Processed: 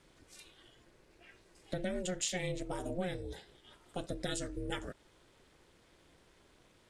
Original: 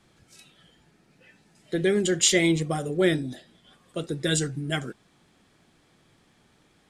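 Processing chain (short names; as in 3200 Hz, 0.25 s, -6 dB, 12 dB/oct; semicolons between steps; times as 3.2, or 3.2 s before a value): compressor 4:1, threshold -33 dBFS, peak gain reduction 14 dB; ring modulator 180 Hz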